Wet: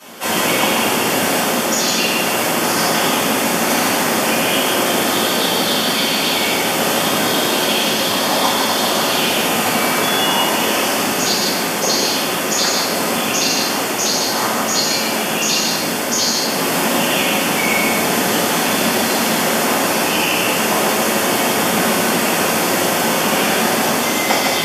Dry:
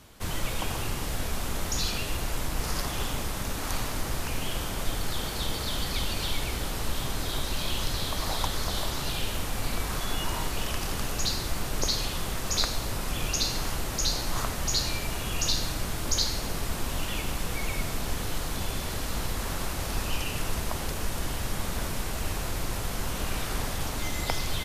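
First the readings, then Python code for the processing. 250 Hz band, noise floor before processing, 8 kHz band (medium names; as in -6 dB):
+18.0 dB, -33 dBFS, +15.0 dB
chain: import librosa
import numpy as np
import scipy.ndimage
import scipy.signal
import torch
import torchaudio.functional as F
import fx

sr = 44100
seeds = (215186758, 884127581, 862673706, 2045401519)

y = scipy.signal.sosfilt(scipy.signal.butter(4, 220.0, 'highpass', fs=sr, output='sos'), x)
y = fx.notch(y, sr, hz=3900.0, q=6.8)
y = fx.rider(y, sr, range_db=10, speed_s=0.5)
y = y + 10.0 ** (-4.0 / 20.0) * np.pad(y, (int(156 * sr / 1000.0), 0))[:len(y)]
y = fx.room_shoebox(y, sr, seeds[0], volume_m3=190.0, walls='mixed', distance_m=5.2)
y = y * librosa.db_to_amplitude(2.0)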